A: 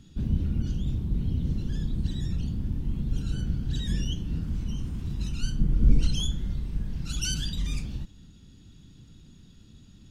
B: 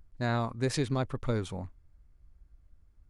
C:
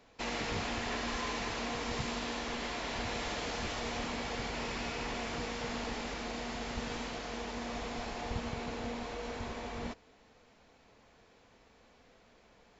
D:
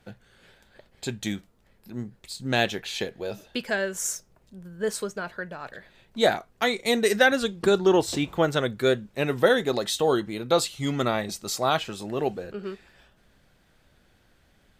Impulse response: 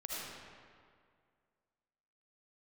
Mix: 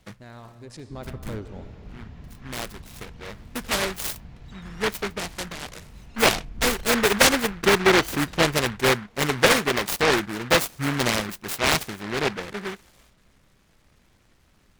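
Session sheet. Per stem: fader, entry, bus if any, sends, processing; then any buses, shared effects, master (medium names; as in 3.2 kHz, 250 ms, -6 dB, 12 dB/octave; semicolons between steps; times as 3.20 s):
-15.5 dB, 0.75 s, no send, none
0.62 s -10 dB -> 1.14 s -1.5 dB, 0.00 s, send -8 dB, local Wiener filter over 25 samples; harmonic-percussive split harmonic -5 dB; peak limiter -26 dBFS, peak gain reduction 7 dB
-19.0 dB, 1.25 s, no send, treble shelf 4.9 kHz -11.5 dB
+2.0 dB, 0.00 s, no send, local Wiener filter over 9 samples; delay time shaken by noise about 1.4 kHz, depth 0.31 ms; auto duck -12 dB, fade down 0.95 s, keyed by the second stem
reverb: on, RT60 2.1 s, pre-delay 35 ms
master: none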